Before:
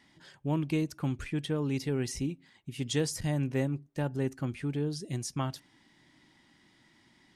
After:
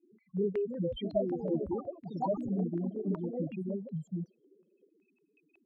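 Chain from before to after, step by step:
spectral peaks only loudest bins 2
speed change +30%
delay with pitch and tempo change per echo 401 ms, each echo +4 semitones, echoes 3, each echo −6 dB
low-pass on a step sequencer 5.4 Hz 390–2,800 Hz

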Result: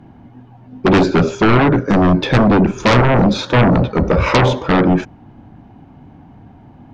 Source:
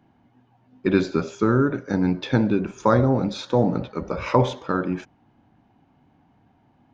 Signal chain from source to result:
spectral tilt −2 dB per octave
in parallel at −7 dB: sine wavefolder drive 17 dB, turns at −1.5 dBFS
on the sum: level −1.5 dB

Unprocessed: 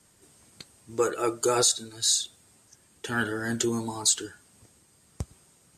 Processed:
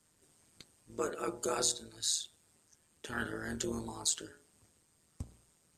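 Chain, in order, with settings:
hum removal 60.31 Hz, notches 17
amplitude modulation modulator 160 Hz, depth 60%
level −6 dB

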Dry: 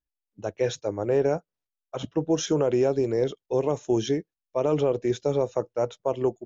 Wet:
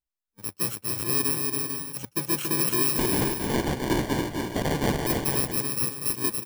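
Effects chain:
samples in bit-reversed order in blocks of 64 samples
0:02.98–0:05.07: sample-rate reduction 1,300 Hz, jitter 0%
bouncing-ball delay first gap 280 ms, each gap 0.6×, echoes 5
level −3 dB

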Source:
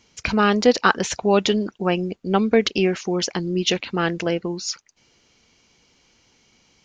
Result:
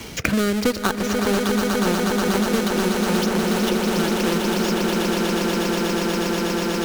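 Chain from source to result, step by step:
each half-wave held at its own peak
rotating-speaker cabinet horn 0.85 Hz
on a send: echo that builds up and dies away 121 ms, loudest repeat 8, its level −8.5 dB
on the sum: multiband upward and downward compressor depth 100%
level −7 dB

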